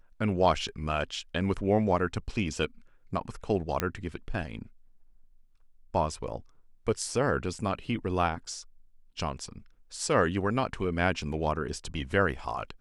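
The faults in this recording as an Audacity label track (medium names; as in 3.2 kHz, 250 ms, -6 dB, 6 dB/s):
3.800000	3.800000	pop -11 dBFS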